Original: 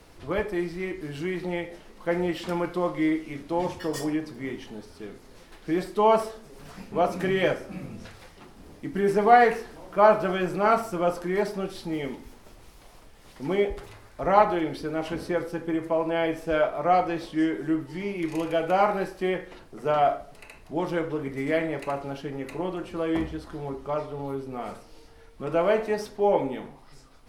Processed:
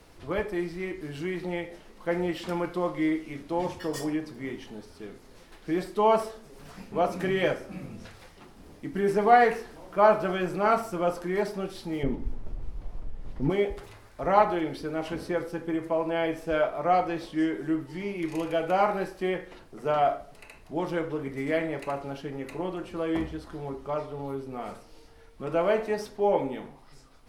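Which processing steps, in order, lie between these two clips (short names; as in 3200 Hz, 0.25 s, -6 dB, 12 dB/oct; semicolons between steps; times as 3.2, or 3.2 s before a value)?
12.03–13.5 tilt -4 dB/oct; gain -2 dB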